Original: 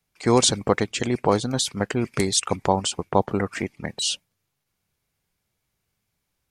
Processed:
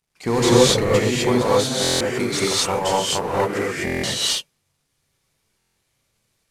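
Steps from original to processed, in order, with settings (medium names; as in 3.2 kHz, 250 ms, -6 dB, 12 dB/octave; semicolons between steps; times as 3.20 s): CVSD coder 64 kbps; 1.17–3.68 s: bass shelf 250 Hz -9.5 dB; hard clipper -13 dBFS, distortion -16 dB; gated-style reverb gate 280 ms rising, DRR -7.5 dB; buffer glitch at 1.82/3.85/5.58 s, samples 1024, times 7; trim -2 dB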